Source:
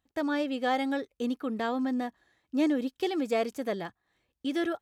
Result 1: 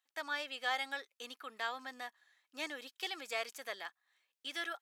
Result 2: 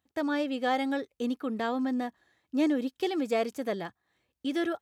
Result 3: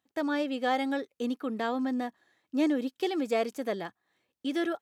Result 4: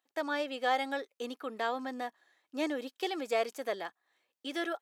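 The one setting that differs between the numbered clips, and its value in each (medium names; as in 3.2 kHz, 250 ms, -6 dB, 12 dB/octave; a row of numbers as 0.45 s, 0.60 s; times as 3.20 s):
high-pass, cutoff frequency: 1.3 kHz, 62 Hz, 170 Hz, 510 Hz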